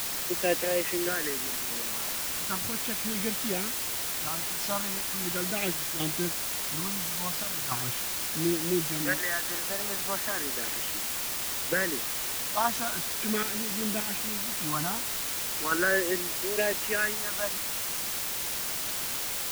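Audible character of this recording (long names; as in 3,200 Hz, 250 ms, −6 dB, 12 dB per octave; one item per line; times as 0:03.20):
phaser sweep stages 4, 0.38 Hz, lowest notch 350–1,300 Hz
sample-and-hold tremolo, depth 75%
a quantiser's noise floor 6 bits, dither triangular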